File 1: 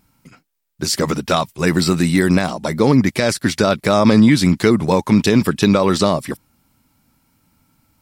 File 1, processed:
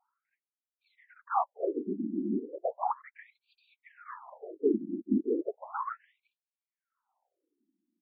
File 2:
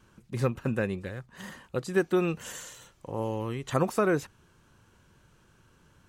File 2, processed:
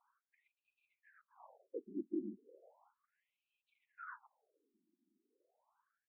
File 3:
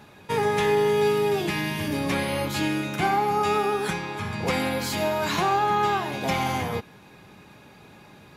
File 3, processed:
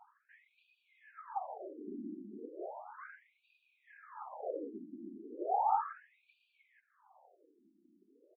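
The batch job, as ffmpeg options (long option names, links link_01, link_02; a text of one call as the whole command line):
ffmpeg -i in.wav -af "firequalizer=gain_entry='entry(250,0);entry(720,10);entry(2900,-28)':delay=0.05:min_phase=1,afftfilt=real='hypot(re,im)*cos(2*PI*random(0))':imag='hypot(re,im)*sin(2*PI*random(1))':win_size=512:overlap=0.75,afftfilt=real='re*between(b*sr/1024,250*pow(3400/250,0.5+0.5*sin(2*PI*0.35*pts/sr))/1.41,250*pow(3400/250,0.5+0.5*sin(2*PI*0.35*pts/sr))*1.41)':imag='im*between(b*sr/1024,250*pow(3400/250,0.5+0.5*sin(2*PI*0.35*pts/sr))/1.41,250*pow(3400/250,0.5+0.5*sin(2*PI*0.35*pts/sr))*1.41)':win_size=1024:overlap=0.75,volume=-7.5dB" out.wav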